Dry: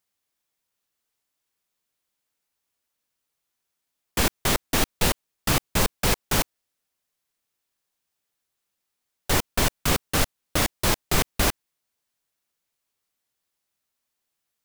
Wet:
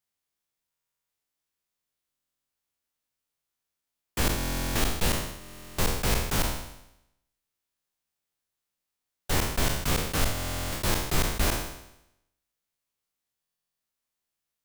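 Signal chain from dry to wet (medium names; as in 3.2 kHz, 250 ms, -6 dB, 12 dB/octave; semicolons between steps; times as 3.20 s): spectral sustain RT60 0.83 s; bass shelf 130 Hz +4.5 dB; buffer glitch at 0.70/2.10/4.36/5.39/10.33/13.41 s, samples 1024, times 16; trim -7.5 dB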